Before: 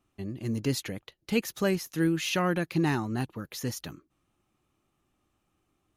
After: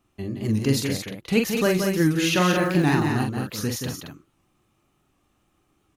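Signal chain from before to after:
0:02.37–0:02.88: surface crackle 230 per second −38 dBFS
loudspeakers that aren't time-aligned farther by 15 metres −5 dB, 60 metres −6 dB, 76 metres −7 dB
wow of a warped record 78 rpm, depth 100 cents
level +5 dB

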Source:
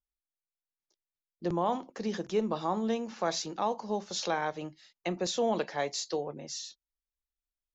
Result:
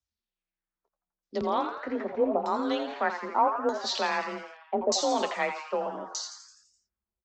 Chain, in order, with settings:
auto-filter low-pass saw down 0.76 Hz 490–5,800 Hz
speed change +7%
frequency shifter +31 Hz
on a send: echo with shifted repeats 84 ms, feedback 57%, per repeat +150 Hz, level −9 dB
on the sum: level +1 dB

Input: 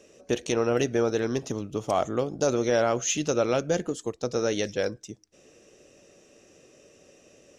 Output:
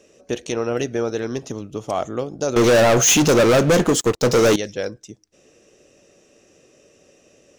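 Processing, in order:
0:02.56–0:04.56: leveller curve on the samples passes 5
level +1.5 dB

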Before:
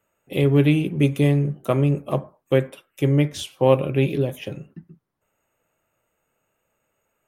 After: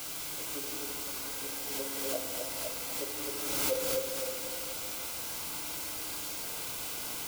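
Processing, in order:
high-pass filter 260 Hz 24 dB per octave
parametric band 870 Hz −14.5 dB 0.77 octaves
in parallel at +1 dB: downward compressor, threshold −31 dBFS, peak gain reduction 15.5 dB
on the sum: granular cloud 100 ms, grains 5.7 per second, spray 22 ms
LFO wah 2.6 Hz 530–1,300 Hz, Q 6.9
bit-depth reduction 6 bits, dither triangular
Butterworth band-reject 1,800 Hz, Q 7.4
on a send: echo through a band-pass that steps 255 ms, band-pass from 420 Hz, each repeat 0.7 octaves, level −2 dB
on the sum: feedback delay network reverb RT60 2.5 s, low-frequency decay 1.5×, high-frequency decay 0.75×, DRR 1.5 dB
background raised ahead of every attack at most 27 dB per second
level −4.5 dB

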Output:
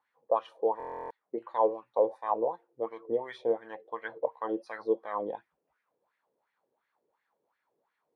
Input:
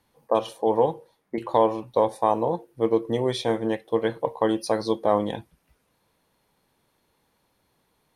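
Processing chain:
LFO wah 2.8 Hz 420–1,900 Hz, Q 3.8
buffer that repeats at 0:00.78, samples 1,024, times 13

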